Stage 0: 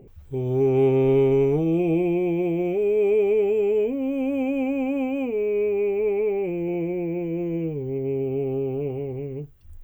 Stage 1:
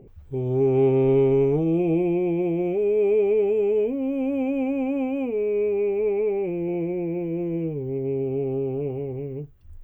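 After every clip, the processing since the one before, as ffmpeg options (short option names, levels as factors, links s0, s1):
-af "highshelf=f=2800:g=-8"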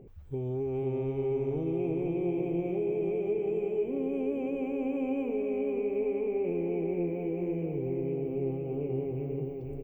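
-filter_complex "[0:a]acompressor=threshold=0.0447:ratio=6,asplit=2[s0][s1];[s1]aecho=0:1:489|978|1467|1956|2445|2934|3423|3912:0.562|0.332|0.196|0.115|0.0681|0.0402|0.0237|0.014[s2];[s0][s2]amix=inputs=2:normalize=0,volume=0.668"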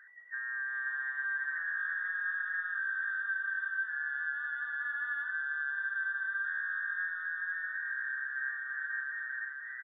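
-filter_complex "[0:a]afftfilt=real='real(if(between(b,1,1012),(2*floor((b-1)/92)+1)*92-b,b),0)':imag='imag(if(between(b,1,1012),(2*floor((b-1)/92)+1)*92-b,b),0)*if(between(b,1,1012),-1,1)':win_size=2048:overlap=0.75,acrossover=split=250 2500:gain=0.0708 1 0.0708[s0][s1][s2];[s0][s1][s2]amix=inputs=3:normalize=0,aresample=8000,aresample=44100,volume=0.668"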